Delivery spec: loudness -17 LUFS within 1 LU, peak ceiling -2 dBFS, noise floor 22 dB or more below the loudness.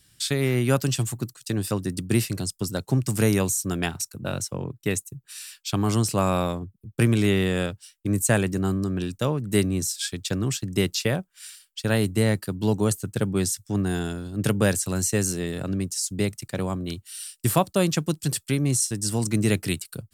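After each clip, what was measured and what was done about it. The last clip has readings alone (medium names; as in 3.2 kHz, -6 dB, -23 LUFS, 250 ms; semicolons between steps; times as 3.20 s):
loudness -25.5 LUFS; peak level -7.0 dBFS; loudness target -17.0 LUFS
-> trim +8.5 dB; peak limiter -2 dBFS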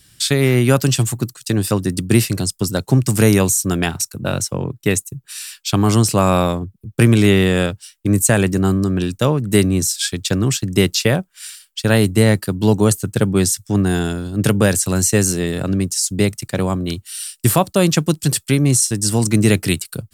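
loudness -17.0 LUFS; peak level -2.0 dBFS; noise floor -57 dBFS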